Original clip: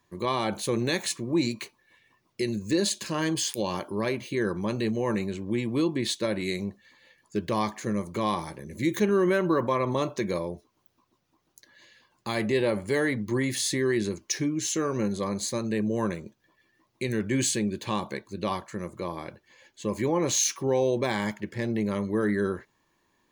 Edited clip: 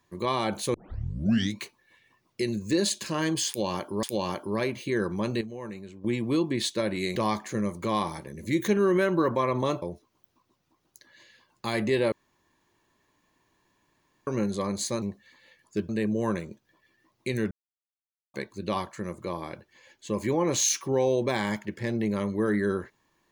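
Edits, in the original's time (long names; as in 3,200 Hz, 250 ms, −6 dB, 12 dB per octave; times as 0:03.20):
0:00.74: tape start 0.87 s
0:03.48–0:04.03: repeat, 2 plays
0:04.86–0:05.49: clip gain −11 dB
0:06.61–0:07.48: move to 0:15.64
0:10.14–0:10.44: remove
0:12.74–0:14.89: fill with room tone
0:17.26–0:18.09: silence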